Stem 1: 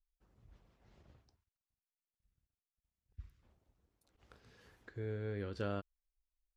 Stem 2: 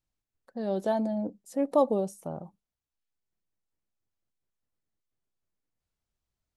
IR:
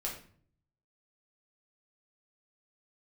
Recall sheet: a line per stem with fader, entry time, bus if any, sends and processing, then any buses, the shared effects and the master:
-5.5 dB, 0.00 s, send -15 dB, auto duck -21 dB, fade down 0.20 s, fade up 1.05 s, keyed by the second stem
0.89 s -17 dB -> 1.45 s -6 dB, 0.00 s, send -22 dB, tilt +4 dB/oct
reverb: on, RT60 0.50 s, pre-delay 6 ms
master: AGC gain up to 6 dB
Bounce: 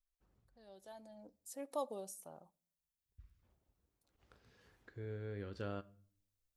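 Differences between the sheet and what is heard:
stem 2 -17.0 dB -> -25.0 dB; master: missing AGC gain up to 6 dB

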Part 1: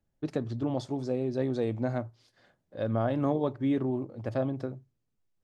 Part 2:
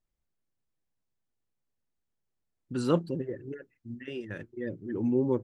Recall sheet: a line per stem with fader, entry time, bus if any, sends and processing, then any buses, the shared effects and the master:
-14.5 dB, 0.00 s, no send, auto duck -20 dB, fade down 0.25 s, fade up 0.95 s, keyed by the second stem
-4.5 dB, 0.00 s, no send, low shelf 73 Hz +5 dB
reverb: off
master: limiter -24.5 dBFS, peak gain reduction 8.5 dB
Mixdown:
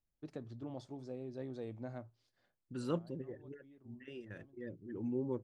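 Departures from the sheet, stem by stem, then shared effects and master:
stem 2 -4.5 dB -> -11.0 dB; master: missing limiter -24.5 dBFS, peak gain reduction 8.5 dB

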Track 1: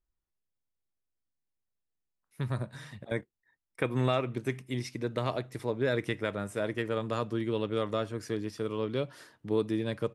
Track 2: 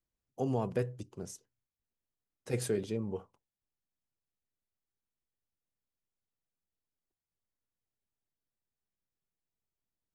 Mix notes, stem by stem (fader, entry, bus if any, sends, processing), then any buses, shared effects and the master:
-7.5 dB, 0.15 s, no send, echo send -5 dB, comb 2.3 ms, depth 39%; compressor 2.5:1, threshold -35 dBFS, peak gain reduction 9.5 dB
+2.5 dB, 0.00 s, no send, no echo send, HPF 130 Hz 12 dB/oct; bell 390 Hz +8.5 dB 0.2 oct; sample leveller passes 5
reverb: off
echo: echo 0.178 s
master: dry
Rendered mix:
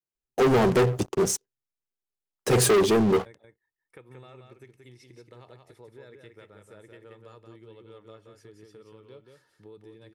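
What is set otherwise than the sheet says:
stem 1 -7.5 dB -> -13.5 dB; master: extra bell 270 Hz -3 dB 0.26 oct

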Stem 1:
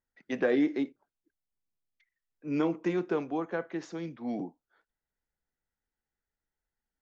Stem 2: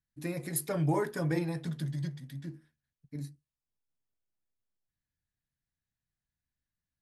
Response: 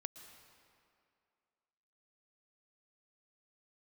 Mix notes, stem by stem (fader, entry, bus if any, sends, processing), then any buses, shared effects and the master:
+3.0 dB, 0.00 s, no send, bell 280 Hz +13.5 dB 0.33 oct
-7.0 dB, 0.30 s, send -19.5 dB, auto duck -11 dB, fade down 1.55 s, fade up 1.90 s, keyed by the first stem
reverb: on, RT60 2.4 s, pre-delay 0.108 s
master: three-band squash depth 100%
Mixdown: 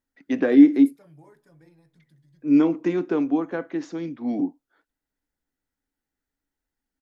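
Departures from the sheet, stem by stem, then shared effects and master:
stem 2 -7.0 dB -> -15.5 dB; master: missing three-band squash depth 100%

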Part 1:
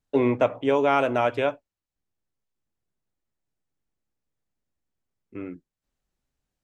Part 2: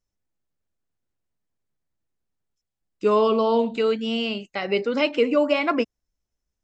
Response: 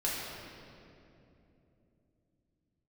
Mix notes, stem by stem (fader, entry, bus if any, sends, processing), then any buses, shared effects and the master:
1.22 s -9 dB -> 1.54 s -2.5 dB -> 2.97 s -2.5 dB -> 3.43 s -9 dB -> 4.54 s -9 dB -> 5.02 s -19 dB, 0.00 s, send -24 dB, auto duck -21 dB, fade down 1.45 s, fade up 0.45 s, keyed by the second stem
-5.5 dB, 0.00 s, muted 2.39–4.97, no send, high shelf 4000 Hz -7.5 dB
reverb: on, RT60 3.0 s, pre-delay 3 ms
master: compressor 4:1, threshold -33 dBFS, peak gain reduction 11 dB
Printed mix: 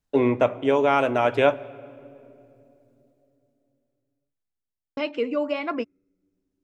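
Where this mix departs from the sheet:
stem 1 -9.0 dB -> +0.5 dB; master: missing compressor 4:1, threshold -33 dBFS, peak gain reduction 11 dB

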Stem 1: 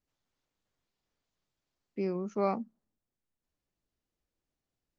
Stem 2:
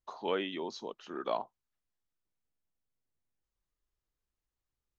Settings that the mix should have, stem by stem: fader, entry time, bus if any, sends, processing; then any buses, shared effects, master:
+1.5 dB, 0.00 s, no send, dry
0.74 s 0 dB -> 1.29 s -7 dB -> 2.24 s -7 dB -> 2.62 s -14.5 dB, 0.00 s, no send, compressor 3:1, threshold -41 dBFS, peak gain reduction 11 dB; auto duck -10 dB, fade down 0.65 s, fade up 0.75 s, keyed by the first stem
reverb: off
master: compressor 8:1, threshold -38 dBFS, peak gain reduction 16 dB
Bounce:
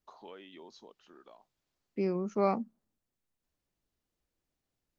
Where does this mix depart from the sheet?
stem 2 0.0 dB -> -7.5 dB; master: missing compressor 8:1, threshold -38 dBFS, peak gain reduction 16 dB

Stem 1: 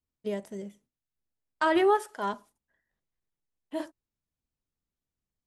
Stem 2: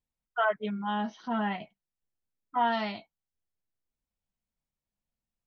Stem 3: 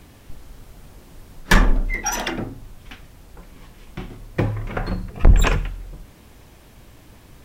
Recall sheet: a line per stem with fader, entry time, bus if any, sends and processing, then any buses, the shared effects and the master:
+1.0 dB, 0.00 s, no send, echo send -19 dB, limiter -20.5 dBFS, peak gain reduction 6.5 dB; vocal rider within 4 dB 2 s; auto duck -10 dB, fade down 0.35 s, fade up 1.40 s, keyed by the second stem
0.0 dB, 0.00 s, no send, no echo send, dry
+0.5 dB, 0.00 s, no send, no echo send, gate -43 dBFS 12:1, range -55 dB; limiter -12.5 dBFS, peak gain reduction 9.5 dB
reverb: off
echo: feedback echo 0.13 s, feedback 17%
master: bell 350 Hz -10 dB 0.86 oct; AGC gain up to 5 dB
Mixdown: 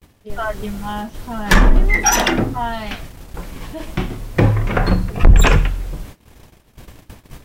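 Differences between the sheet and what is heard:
stem 3 +0.5 dB -> +7.5 dB; master: missing bell 350 Hz -10 dB 0.86 oct

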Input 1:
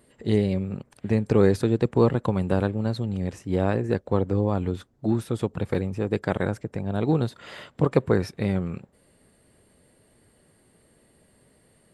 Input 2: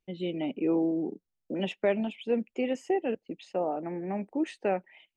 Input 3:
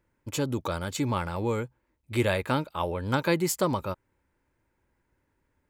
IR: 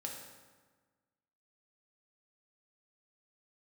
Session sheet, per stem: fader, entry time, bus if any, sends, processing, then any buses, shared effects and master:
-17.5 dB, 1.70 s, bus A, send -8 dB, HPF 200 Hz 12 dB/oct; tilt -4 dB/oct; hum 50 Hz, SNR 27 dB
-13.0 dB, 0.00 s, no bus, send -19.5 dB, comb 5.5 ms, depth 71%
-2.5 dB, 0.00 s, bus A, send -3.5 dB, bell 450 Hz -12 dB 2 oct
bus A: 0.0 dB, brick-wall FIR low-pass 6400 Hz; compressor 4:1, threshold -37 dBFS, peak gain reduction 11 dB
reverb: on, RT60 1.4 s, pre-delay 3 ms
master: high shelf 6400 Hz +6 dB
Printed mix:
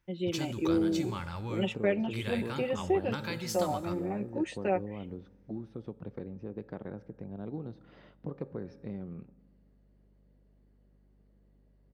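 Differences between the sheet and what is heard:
stem 1: entry 1.70 s -> 0.45 s; stem 2 -13.0 dB -> -4.0 dB; reverb return -7.5 dB

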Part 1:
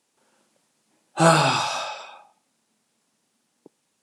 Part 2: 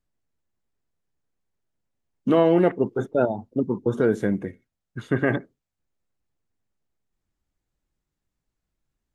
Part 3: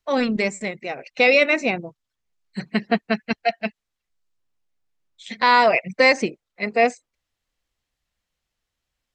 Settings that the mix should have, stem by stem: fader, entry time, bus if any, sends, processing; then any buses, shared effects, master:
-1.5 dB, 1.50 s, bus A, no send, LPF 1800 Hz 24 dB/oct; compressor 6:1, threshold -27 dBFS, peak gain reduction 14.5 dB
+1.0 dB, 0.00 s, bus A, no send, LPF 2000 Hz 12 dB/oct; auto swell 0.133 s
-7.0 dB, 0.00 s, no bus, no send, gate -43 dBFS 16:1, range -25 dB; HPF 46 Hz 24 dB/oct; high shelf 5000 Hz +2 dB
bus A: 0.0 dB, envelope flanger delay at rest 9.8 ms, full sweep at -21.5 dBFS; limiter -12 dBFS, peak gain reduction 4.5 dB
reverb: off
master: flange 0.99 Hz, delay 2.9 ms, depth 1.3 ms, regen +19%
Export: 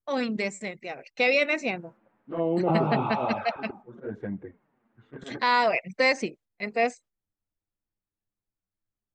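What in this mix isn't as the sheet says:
stem 1 -1.5 dB -> +6.5 dB; stem 2 +1.0 dB -> -7.0 dB; master: missing flange 0.99 Hz, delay 2.9 ms, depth 1.3 ms, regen +19%

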